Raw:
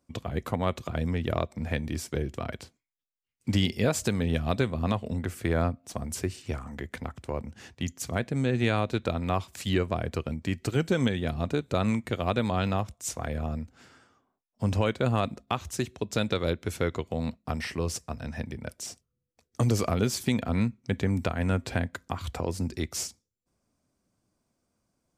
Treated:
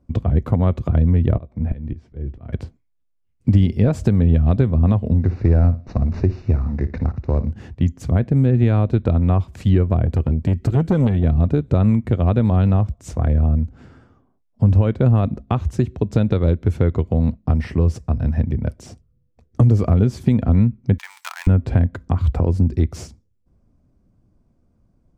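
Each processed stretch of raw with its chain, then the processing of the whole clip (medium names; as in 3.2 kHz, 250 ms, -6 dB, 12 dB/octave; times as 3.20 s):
1.32–2.53 s: low-pass 3.6 kHz + slow attack 497 ms + doubling 17 ms -12.5 dB
5.21–7.52 s: CVSD coder 32 kbps + Butterworth band-stop 3.2 kHz, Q 4.2 + flutter echo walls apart 10.1 m, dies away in 0.24 s
10.06–11.24 s: treble shelf 9.5 kHz +7.5 dB + transformer saturation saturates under 700 Hz
20.98–21.47 s: dead-time distortion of 0.11 ms + elliptic high-pass 910 Hz, stop band 60 dB + tilt EQ +4.5 dB/octave
whole clip: tilt EQ -4.5 dB/octave; compression 2:1, threshold -19 dBFS; trim +4.5 dB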